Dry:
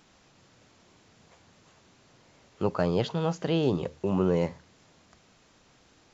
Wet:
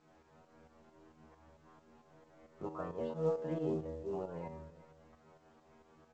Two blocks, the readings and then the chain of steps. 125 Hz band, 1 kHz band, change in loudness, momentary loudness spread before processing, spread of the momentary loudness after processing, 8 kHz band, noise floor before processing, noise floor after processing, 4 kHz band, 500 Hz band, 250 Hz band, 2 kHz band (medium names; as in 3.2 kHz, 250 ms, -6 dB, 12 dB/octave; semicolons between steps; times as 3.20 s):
-14.0 dB, -11.0 dB, -11.5 dB, 6 LU, 12 LU, no reading, -61 dBFS, -67 dBFS, under -20 dB, -9.5 dB, -13.0 dB, -17.0 dB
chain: companding laws mixed up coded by mu; low-pass 1.1 kHz 12 dB/octave; bass shelf 210 Hz -5.5 dB; in parallel at -2 dB: peak limiter -22.5 dBFS, peak gain reduction 9 dB; on the sum: inharmonic resonator 77 Hz, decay 0.76 s, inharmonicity 0.002; volume shaper 134 bpm, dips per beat 2, -9 dB, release 192 ms; on a send: delay 370 ms -18.5 dB; on the sum: trim +1.5 dB; µ-law 128 kbps 16 kHz